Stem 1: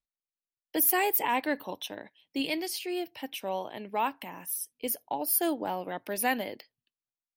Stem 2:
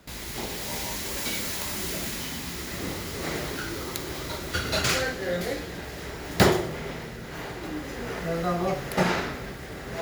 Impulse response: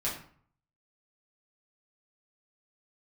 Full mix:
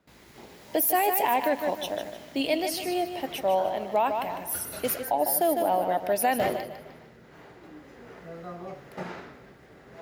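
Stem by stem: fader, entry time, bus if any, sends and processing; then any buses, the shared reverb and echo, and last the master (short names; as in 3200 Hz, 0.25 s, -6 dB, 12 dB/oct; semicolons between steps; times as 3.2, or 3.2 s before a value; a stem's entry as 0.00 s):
+2.0 dB, 0.00 s, no send, echo send -9 dB, bell 660 Hz +12.5 dB 0.56 oct
-11.5 dB, 0.00 s, no send, no echo send, HPF 150 Hz 6 dB/oct; high shelf 2800 Hz -10.5 dB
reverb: off
echo: feedback echo 0.152 s, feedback 35%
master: limiter -15 dBFS, peak gain reduction 6 dB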